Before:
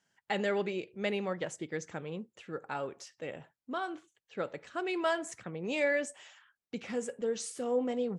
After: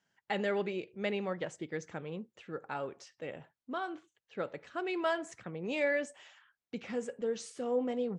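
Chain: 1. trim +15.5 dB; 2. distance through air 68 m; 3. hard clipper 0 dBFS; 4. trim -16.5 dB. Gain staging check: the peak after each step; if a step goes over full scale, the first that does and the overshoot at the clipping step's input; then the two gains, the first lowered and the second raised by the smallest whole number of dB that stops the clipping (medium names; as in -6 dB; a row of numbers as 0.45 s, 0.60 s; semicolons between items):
-2.0 dBFS, -2.5 dBFS, -2.5 dBFS, -19.0 dBFS; nothing clips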